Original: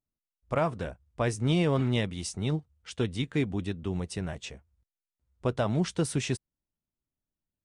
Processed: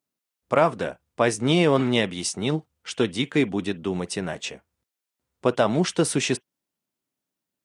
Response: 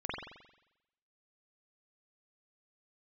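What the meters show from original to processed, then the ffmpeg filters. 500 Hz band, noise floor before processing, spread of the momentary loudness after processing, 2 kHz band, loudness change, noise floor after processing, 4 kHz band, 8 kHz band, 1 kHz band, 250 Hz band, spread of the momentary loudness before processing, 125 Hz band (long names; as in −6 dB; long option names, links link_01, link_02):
+8.5 dB, below −85 dBFS, 11 LU, +9.0 dB, +6.5 dB, below −85 dBFS, +9.0 dB, +9.0 dB, +9.0 dB, +6.0 dB, 11 LU, 0.0 dB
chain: -filter_complex "[0:a]highpass=220,asplit=2[link_01][link_02];[1:a]atrim=start_sample=2205,atrim=end_sample=3087,lowshelf=frequency=360:gain=-10[link_03];[link_02][link_03]afir=irnorm=-1:irlink=0,volume=-20.5dB[link_04];[link_01][link_04]amix=inputs=2:normalize=0,volume=8.5dB"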